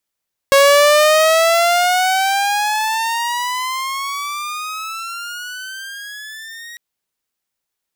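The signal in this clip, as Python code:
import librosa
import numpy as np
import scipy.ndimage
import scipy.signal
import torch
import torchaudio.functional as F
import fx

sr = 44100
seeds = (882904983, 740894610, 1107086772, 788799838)

y = fx.riser_tone(sr, length_s=6.25, level_db=-4.5, wave='saw', hz=549.0, rise_st=21.5, swell_db=-24.5)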